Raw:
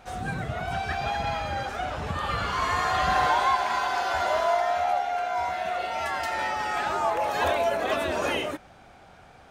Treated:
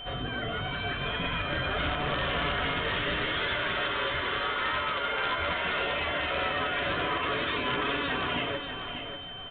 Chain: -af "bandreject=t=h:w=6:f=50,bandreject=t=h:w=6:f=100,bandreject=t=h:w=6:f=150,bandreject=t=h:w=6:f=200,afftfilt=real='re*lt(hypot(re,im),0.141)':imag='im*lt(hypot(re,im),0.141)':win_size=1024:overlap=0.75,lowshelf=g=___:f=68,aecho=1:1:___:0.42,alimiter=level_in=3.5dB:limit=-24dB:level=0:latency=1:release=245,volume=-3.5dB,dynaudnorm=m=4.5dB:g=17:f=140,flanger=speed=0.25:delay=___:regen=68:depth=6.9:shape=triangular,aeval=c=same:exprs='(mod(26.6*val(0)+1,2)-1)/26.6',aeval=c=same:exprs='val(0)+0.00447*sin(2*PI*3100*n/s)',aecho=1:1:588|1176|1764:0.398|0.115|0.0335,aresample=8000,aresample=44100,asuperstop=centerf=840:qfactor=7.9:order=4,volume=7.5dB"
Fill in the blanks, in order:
10.5, 7, 7